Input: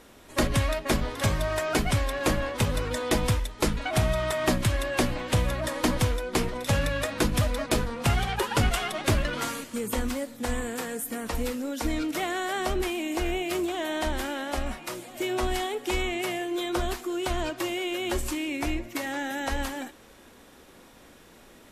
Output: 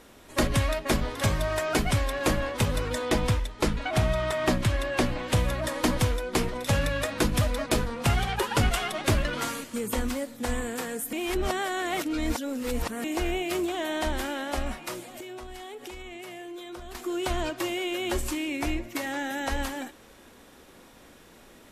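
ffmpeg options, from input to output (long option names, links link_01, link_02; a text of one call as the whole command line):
ffmpeg -i in.wav -filter_complex "[0:a]asettb=1/sr,asplit=3[link_01][link_02][link_03];[link_01]atrim=end=3.054[link_04];[link_02]atrim=start=3.05:end=5.23,asetpts=PTS-STARTPTS,afade=type=in:duration=0.004:curve=qsin,afade=type=out:start_time=2.176:duration=0.004:curve=qsin,highshelf=frequency=7800:gain=-8[link_05];[link_03]atrim=start=5.226[link_06];[link_04][link_05]acrossfade=duration=0.004:curve1=hsin:curve2=qsin[link_07];[link_07][link_06]acrossfade=duration=0.004:curve1=qsin:curve2=hsin,asettb=1/sr,asplit=3[link_08][link_09][link_10];[link_08]atrim=end=15.074[link_11];[link_09]atrim=start=15.07:end=16.95,asetpts=PTS-STARTPTS,afade=type=in:duration=0.004:curve=qsin,afade=type=out:start_time=1.876:duration=0.004:curve=qsin,acompressor=threshold=-37dB:ratio=10:attack=3.2:release=140:knee=1:detection=peak[link_12];[link_10]atrim=start=16.946[link_13];[link_11][link_12]acrossfade=duration=0.004:curve1=hsin:curve2=qsin[link_14];[link_14][link_13]acrossfade=duration=0.004:curve1=qsin:curve2=hsin,asplit=3[link_15][link_16][link_17];[link_15]atrim=end=11.132[link_18];[link_16]atrim=start=11.128:end=13.042,asetpts=PTS-STARTPTS,areverse[link_19];[link_17]atrim=start=13.038[link_20];[link_18][link_19]acrossfade=duration=0.004:curve1=hsin:curve2=hsin[link_21];[link_21][link_20]acrossfade=duration=0.004:curve1=hsin:curve2=hsin" out.wav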